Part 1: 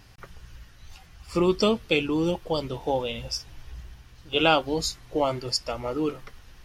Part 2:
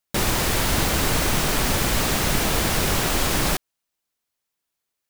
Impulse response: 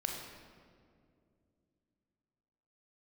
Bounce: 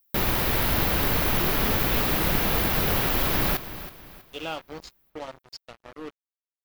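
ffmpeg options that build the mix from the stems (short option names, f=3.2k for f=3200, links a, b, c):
-filter_complex "[0:a]bandreject=f=136.8:t=h:w=4,bandreject=f=273.6:t=h:w=4,bandreject=f=410.4:t=h:w=4,bandreject=f=547.2:t=h:w=4,bandreject=f=684:t=h:w=4,bandreject=f=820.8:t=h:w=4,bandreject=f=957.6:t=h:w=4,bandreject=f=1.0944k:t=h:w=4,bandreject=f=1.2312k:t=h:w=4,bandreject=f=1.368k:t=h:w=4,bandreject=f=1.5048k:t=h:w=4,bandreject=f=1.6416k:t=h:w=4,bandreject=f=1.7784k:t=h:w=4,bandreject=f=1.9152k:t=h:w=4,bandreject=f=2.052k:t=h:w=4,bandreject=f=2.1888k:t=h:w=4,bandreject=f=2.3256k:t=h:w=4,bandreject=f=2.4624k:t=h:w=4,bandreject=f=2.5992k:t=h:w=4,bandreject=f=2.736k:t=h:w=4,bandreject=f=2.8728k:t=h:w=4,acrusher=bits=3:mix=0:aa=0.5,acrossover=split=5900[a][b];[b]acompressor=threshold=-44dB:ratio=4:attack=1:release=60[c];[a][c]amix=inputs=2:normalize=0,volume=-13dB[d];[1:a]acrossover=split=4800[e][f];[f]acompressor=threshold=-42dB:ratio=4:attack=1:release=60[g];[e][g]amix=inputs=2:normalize=0,aexciter=amount=10.3:drive=3.7:freq=11k,volume=-3dB,asplit=2[h][i];[i]volume=-14dB,aecho=0:1:323|646|969|1292|1615:1|0.36|0.13|0.0467|0.0168[j];[d][h][j]amix=inputs=3:normalize=0"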